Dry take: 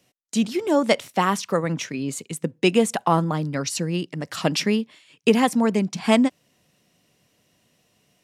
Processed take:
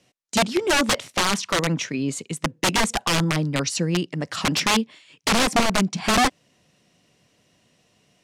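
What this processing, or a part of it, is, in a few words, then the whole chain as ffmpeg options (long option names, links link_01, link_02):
overflowing digital effects unit: -af "aeval=exprs='(mod(5.96*val(0)+1,2)-1)/5.96':channel_layout=same,lowpass=8500,volume=2.5dB"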